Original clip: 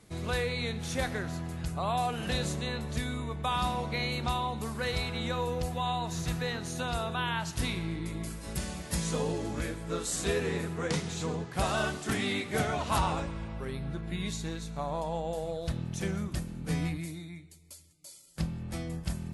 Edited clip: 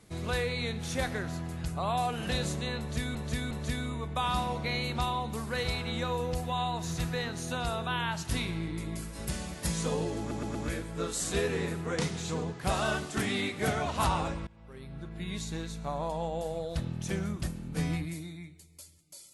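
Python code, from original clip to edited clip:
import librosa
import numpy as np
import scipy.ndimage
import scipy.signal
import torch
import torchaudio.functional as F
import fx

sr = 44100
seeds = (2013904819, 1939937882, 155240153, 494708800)

y = fx.edit(x, sr, fx.repeat(start_s=2.79, length_s=0.36, count=3),
    fx.stutter(start_s=9.47, slice_s=0.12, count=4),
    fx.fade_in_from(start_s=13.39, length_s=1.12, floor_db=-22.5), tone=tone)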